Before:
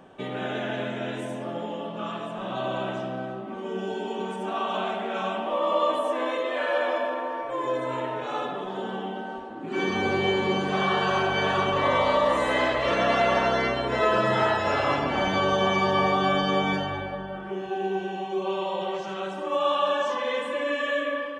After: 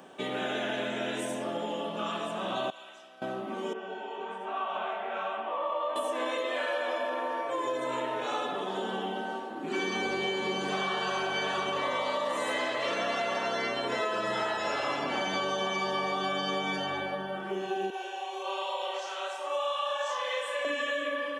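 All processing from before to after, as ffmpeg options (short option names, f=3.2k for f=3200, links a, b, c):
-filter_complex "[0:a]asettb=1/sr,asplit=3[a][b][c];[a]atrim=end=2.704[d];[b]atrim=start=2.7:end=3.22,asetpts=PTS-STARTPTS,afade=t=in:d=0.004:c=qsin,afade=t=out:st=0.516:d=0.004:c=qsin,lowpass=f=1.9k:p=1,aderivative[e];[c]atrim=start=3.216[f];[d][e]acrossfade=d=0.004:c1=hsin:c2=qsin[g];[g][f]acrossfade=d=0.004:c1=qsin:c2=hsin,asettb=1/sr,asplit=3[h][i][j];[h]atrim=end=3.734[k];[i]atrim=start=3.73:end=5.96,asetpts=PTS-STARTPTS,afade=t=in:d=0.004:c=qsin,afade=t=out:st=2.226:d=0.004:c=qsin,acrossover=split=490 2700:gain=0.251 1 0.0794[l][m][n];[l][m][n]amix=inputs=3:normalize=0,flanger=delay=18:depth=6.1:speed=1.2[o];[j]atrim=start=5.956[p];[k][o]acrossfade=d=0.004:c1=hsin:c2=qsin[q];[q][p]acrossfade=d=0.004:c1=qsin:c2=hsin,asettb=1/sr,asplit=3[r][s][t];[r]atrim=end=17.904[u];[s]atrim=start=17.9:end=20.65,asetpts=PTS-STARTPTS,afade=t=in:d=0.004:c=qsin,afade=t=out:st=2.746:d=0.004:c=qsin,highpass=f=510:w=0.5412,highpass=f=510:w=1.3066,flanger=delay=5.3:depth=5.5:regen=-68:speed=1.2:shape=triangular,asplit=2[v][w];[w]adelay=33,volume=-2.5dB[x];[v][x]amix=inputs=2:normalize=0,atrim=end_sample=121275[y];[t]atrim=start=20.646[z];[u][y]acrossfade=d=0.004:c1=hsin:c2=qsin[aa];[aa][z]acrossfade=d=0.004:c1=qsin:c2=hsin,highpass=200,highshelf=f=4.1k:g=11.5,acompressor=threshold=-28dB:ratio=6"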